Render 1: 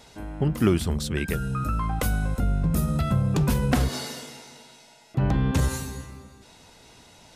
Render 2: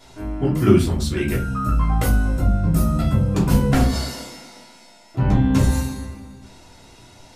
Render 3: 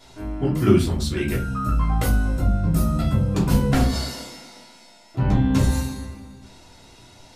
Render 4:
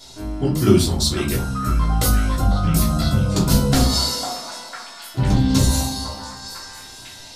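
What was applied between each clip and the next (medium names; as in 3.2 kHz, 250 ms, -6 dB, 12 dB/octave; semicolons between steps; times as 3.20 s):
simulated room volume 160 m³, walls furnished, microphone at 3.1 m; trim -3 dB
peaking EQ 4 kHz +2.5 dB; trim -2 dB
resonant high shelf 3.2 kHz +8 dB, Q 1.5; repeats whose band climbs or falls 501 ms, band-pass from 870 Hz, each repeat 0.7 oct, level -1 dB; trim +2 dB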